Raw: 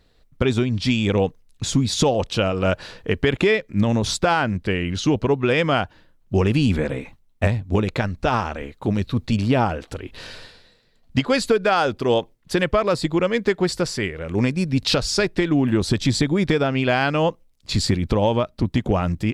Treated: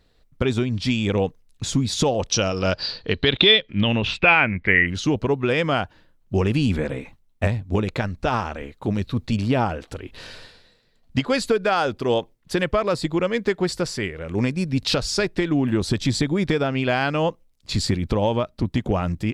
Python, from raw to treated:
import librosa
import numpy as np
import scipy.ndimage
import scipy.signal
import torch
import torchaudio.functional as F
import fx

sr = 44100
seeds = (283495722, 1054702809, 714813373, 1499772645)

y = fx.lowpass_res(x, sr, hz=fx.line((2.31, 6000.0), (4.86, 1900.0)), q=14.0, at=(2.31, 4.86), fade=0.02)
y = y * 10.0 ** (-2.0 / 20.0)